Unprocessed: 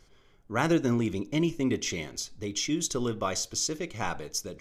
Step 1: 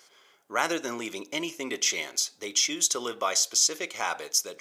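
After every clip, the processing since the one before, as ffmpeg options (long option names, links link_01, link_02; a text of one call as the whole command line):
ffmpeg -i in.wav -filter_complex "[0:a]asplit=2[link_01][link_02];[link_02]alimiter=limit=-24dB:level=0:latency=1:release=147,volume=0.5dB[link_03];[link_01][link_03]amix=inputs=2:normalize=0,highpass=600,highshelf=frequency=5000:gain=6" out.wav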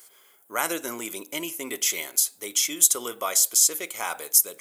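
ffmpeg -i in.wav -af "aexciter=amount=7.6:drive=6.7:freq=8100,volume=-1dB" out.wav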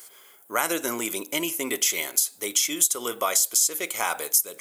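ffmpeg -i in.wav -af "acompressor=threshold=-25dB:ratio=3,volume=5dB" out.wav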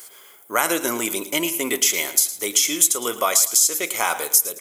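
ffmpeg -i in.wav -af "aecho=1:1:111|222|333:0.188|0.0603|0.0193,volume=4.5dB" out.wav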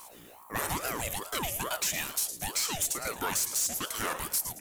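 ffmpeg -i in.wav -af "aeval=exprs='val(0)+0.00562*(sin(2*PI*60*n/s)+sin(2*PI*2*60*n/s)/2+sin(2*PI*3*60*n/s)/3+sin(2*PI*4*60*n/s)/4+sin(2*PI*5*60*n/s)/5)':channel_layout=same,asoftclip=type=tanh:threshold=-16.5dB,aeval=exprs='val(0)*sin(2*PI*630*n/s+630*0.65/2.3*sin(2*PI*2.3*n/s))':channel_layout=same,volume=-5dB" out.wav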